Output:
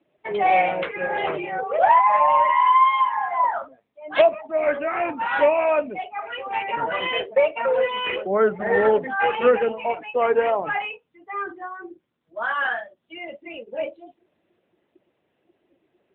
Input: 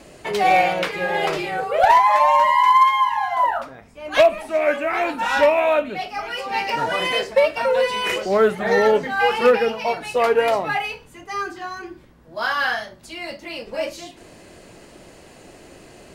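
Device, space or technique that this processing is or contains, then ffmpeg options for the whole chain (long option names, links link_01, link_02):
mobile call with aggressive noise cancelling: -af "highpass=frequency=120:poles=1,afftdn=noise_reduction=22:noise_floor=-29,volume=-1.5dB" -ar 8000 -c:a libopencore_amrnb -b:a 10200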